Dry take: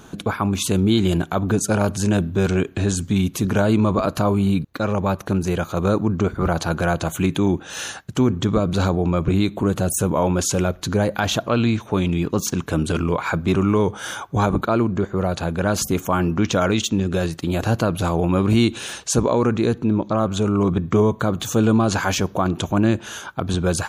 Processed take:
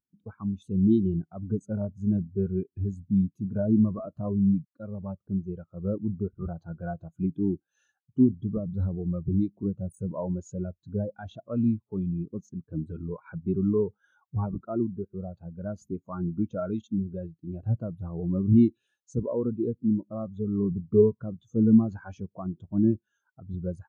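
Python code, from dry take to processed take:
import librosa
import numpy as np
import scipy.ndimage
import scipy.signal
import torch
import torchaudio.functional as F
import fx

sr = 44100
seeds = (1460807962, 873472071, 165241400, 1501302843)

y = fx.spectral_expand(x, sr, expansion=2.5)
y = F.gain(torch.from_numpy(y), -2.0).numpy()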